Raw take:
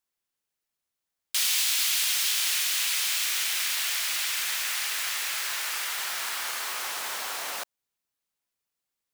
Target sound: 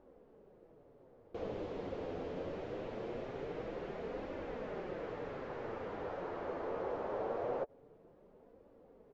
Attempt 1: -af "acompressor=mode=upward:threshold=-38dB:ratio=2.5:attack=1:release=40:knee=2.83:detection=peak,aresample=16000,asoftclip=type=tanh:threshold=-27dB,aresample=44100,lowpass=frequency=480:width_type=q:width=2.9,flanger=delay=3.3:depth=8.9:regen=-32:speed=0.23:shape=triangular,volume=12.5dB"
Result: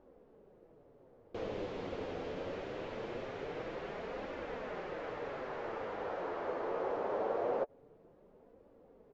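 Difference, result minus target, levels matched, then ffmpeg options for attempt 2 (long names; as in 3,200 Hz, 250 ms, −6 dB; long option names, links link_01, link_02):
soft clipping: distortion −6 dB
-af "acompressor=mode=upward:threshold=-38dB:ratio=2.5:attack=1:release=40:knee=2.83:detection=peak,aresample=16000,asoftclip=type=tanh:threshold=-35.5dB,aresample=44100,lowpass=frequency=480:width_type=q:width=2.9,flanger=delay=3.3:depth=8.9:regen=-32:speed=0.23:shape=triangular,volume=12.5dB"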